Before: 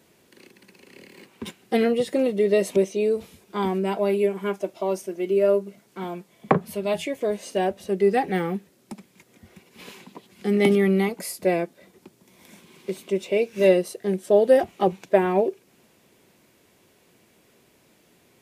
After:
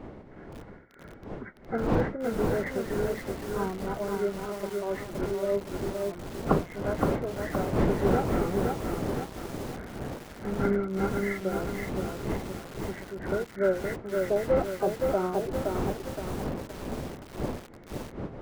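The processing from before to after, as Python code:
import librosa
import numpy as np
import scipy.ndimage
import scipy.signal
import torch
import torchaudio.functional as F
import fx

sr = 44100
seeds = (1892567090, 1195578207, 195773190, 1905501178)

y = fx.freq_compress(x, sr, knee_hz=1200.0, ratio=4.0)
y = fx.dmg_wind(y, sr, seeds[0], corner_hz=410.0, level_db=-26.0)
y = fx.tremolo_shape(y, sr, shape='triangle', hz=3.1, depth_pct=70)
y = fx.echo_crushed(y, sr, ms=519, feedback_pct=55, bits=6, wet_db=-3.0)
y = y * librosa.db_to_amplitude(-6.0)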